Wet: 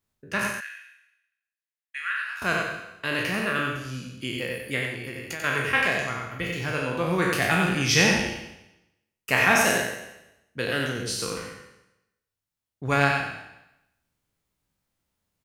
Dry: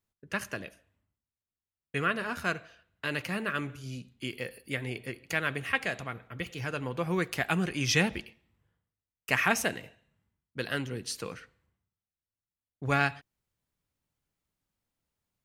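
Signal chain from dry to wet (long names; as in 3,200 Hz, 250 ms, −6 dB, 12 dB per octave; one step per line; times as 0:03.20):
peak hold with a decay on every bin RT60 0.90 s
0:00.51–0:02.42: four-pole ladder high-pass 1,500 Hz, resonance 50%
0:04.85–0:05.44: downward compressor 12 to 1, threshold −34 dBFS, peak gain reduction 12.5 dB
single-tap delay 92 ms −5 dB
level +2.5 dB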